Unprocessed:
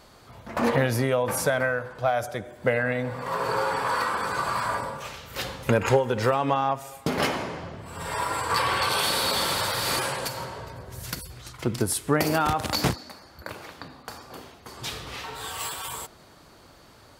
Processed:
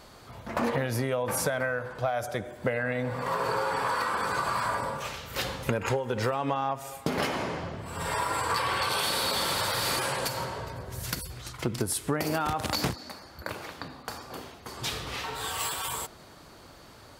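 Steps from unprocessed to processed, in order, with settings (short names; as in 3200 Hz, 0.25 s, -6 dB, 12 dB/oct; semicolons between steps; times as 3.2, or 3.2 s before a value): compressor 4:1, threshold -27 dBFS, peak gain reduction 11 dB; gain +1.5 dB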